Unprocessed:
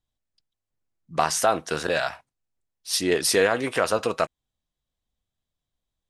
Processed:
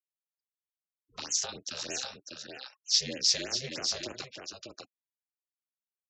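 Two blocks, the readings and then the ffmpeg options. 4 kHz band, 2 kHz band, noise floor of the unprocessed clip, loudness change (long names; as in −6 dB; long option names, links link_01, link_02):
+1.0 dB, −15.0 dB, below −85 dBFS, −6.0 dB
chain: -filter_complex "[0:a]acrossover=split=300|420|2000[link_01][link_02][link_03][link_04];[link_03]acompressor=threshold=-36dB:ratio=6[link_05];[link_01][link_02][link_05][link_04]amix=inputs=4:normalize=0,aecho=1:1:597:0.447,acrossover=split=250|3000[link_06][link_07][link_08];[link_07]acompressor=threshold=-41dB:ratio=1.5[link_09];[link_06][link_09][link_08]amix=inputs=3:normalize=0,aeval=exprs='0.335*(cos(1*acos(clip(val(0)/0.335,-1,1)))-cos(1*PI/2))+0.00473*(cos(5*acos(clip(val(0)/0.335,-1,1)))-cos(5*PI/2))+0.00376*(cos(8*acos(clip(val(0)/0.335,-1,1)))-cos(8*PI/2))':channel_layout=same,lowshelf=frequency=140:gain=-11.5,aresample=16000,aresample=44100,aeval=exprs='val(0)*sin(2*PI*130*n/s)':channel_layout=same,highpass=84,equalizer=frequency=5100:width_type=o:width=1.3:gain=10.5,afftfilt=real='re*gte(hypot(re,im),0.00447)':imag='im*gte(hypot(re,im),0.00447)':win_size=1024:overlap=0.75,afftfilt=real='re*(1-between(b*sr/1024,250*pow(4500/250,0.5+0.5*sin(2*PI*3.2*pts/sr))/1.41,250*pow(4500/250,0.5+0.5*sin(2*PI*3.2*pts/sr))*1.41))':imag='im*(1-between(b*sr/1024,250*pow(4500/250,0.5+0.5*sin(2*PI*3.2*pts/sr))/1.41,250*pow(4500/250,0.5+0.5*sin(2*PI*3.2*pts/sr))*1.41))':win_size=1024:overlap=0.75,volume=-5.5dB"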